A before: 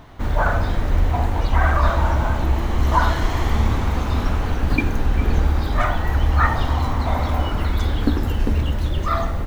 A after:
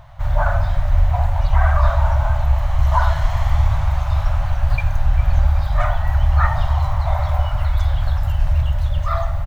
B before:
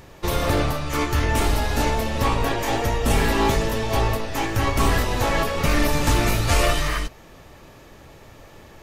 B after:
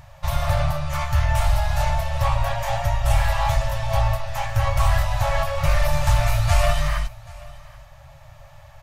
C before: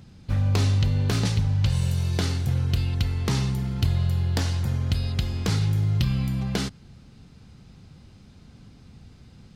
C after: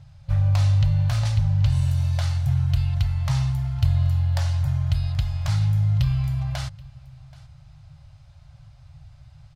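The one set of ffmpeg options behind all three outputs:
-af "tiltshelf=f=970:g=4,afftfilt=real='re*(1-between(b*sr/4096,160,540))':imag='im*(1-between(b*sr/4096,160,540))':win_size=4096:overlap=0.75,aecho=1:1:779:0.075,volume=-1dB"

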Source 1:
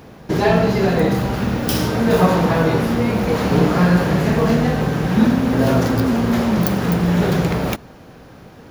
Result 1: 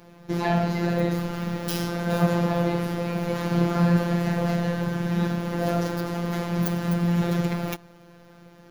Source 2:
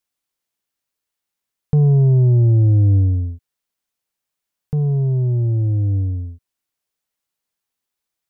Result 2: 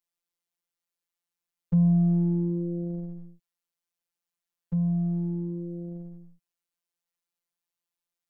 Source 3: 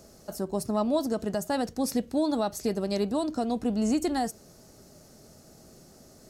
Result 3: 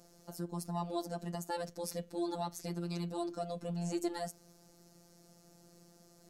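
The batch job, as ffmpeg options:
-af "afftfilt=real='hypot(re,im)*cos(PI*b)':imag='0':win_size=1024:overlap=0.75,volume=-5dB"

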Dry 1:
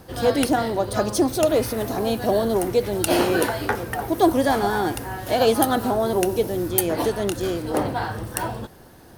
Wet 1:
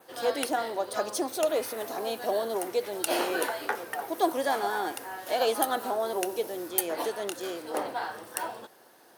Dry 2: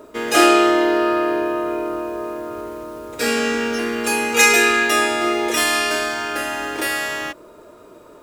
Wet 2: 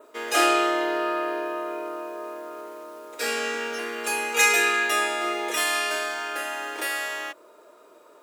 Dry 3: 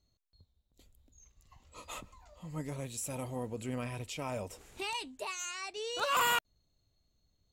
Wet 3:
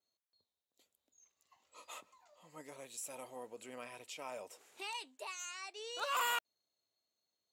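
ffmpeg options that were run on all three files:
-af "highpass=460,adynamicequalizer=threshold=0.00631:dfrequency=5100:dqfactor=3.4:tfrequency=5100:tqfactor=3.4:attack=5:release=100:ratio=0.375:range=2:mode=cutabove:tftype=bell,volume=-5.5dB"

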